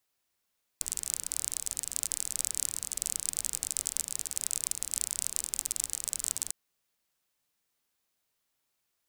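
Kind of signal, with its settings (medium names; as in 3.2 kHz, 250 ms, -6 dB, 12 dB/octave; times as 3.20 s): rain from filtered ticks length 5.70 s, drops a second 35, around 8 kHz, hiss -18 dB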